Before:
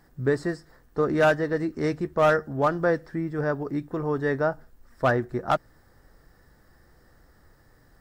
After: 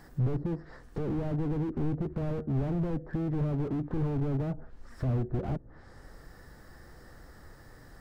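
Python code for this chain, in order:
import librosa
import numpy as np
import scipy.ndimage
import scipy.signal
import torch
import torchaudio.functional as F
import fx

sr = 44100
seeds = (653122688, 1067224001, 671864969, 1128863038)

y = fx.env_lowpass_down(x, sr, base_hz=390.0, full_db=-23.0)
y = fx.slew_limit(y, sr, full_power_hz=4.6)
y = y * 10.0 ** (6.0 / 20.0)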